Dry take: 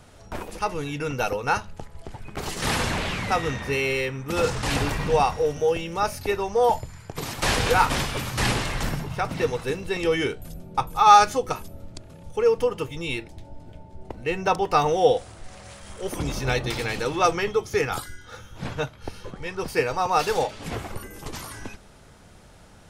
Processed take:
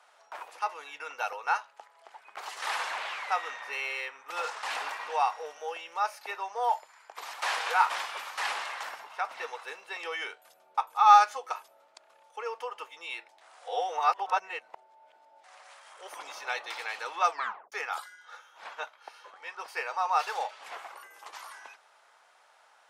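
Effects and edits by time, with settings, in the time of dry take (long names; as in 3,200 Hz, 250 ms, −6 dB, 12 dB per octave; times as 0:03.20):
0:13.41–0:15.44: reverse
0:17.30: tape stop 0.42 s
whole clip: high-pass filter 840 Hz 24 dB per octave; spectral tilt −3.5 dB per octave; level −2 dB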